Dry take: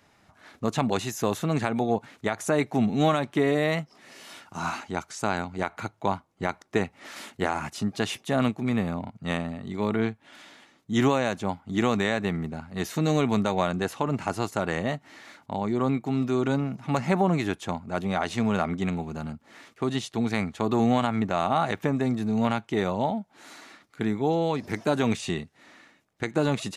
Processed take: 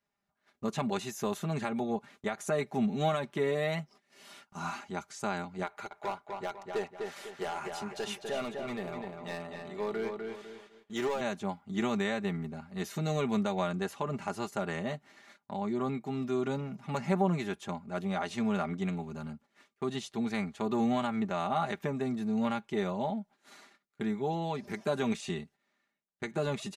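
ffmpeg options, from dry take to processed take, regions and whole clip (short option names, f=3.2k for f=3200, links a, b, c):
-filter_complex "[0:a]asettb=1/sr,asplit=3[a][b][c];[a]atrim=end=5.664[d];[b]atrim=start=5.66:end=11.21,asetpts=PTS-STARTPTS,afade=t=in:d=0.004:c=qsin,afade=t=out:st=5.546:d=0.004:c=qsin,lowshelf=f=310:t=q:w=1.5:g=-7.5,volume=21dB,asoftclip=hard,volume=-21dB,asplit=2[e][f];[f]adelay=250,lowpass=f=4.2k:p=1,volume=-4.5dB,asplit=2[g][h];[h]adelay=250,lowpass=f=4.2k:p=1,volume=0.37,asplit=2[i][j];[j]adelay=250,lowpass=f=4.2k:p=1,volume=0.37,asplit=2[k][l];[l]adelay=250,lowpass=f=4.2k:p=1,volume=0.37,asplit=2[m][n];[n]adelay=250,lowpass=f=4.2k:p=1,volume=0.37[o];[e][g][i][k][m][o]amix=inputs=6:normalize=0,atrim=end_sample=244755[p];[c]atrim=start=11.206[q];[d][p]acrossfade=d=0.004:c1=hsin:c2=qsin[r];[r][q]acrossfade=d=0.004:c1=qsin:c2=hsin,agate=range=-18dB:threshold=-47dB:ratio=16:detection=peak,aecho=1:1:5:0.64,volume=-8.5dB"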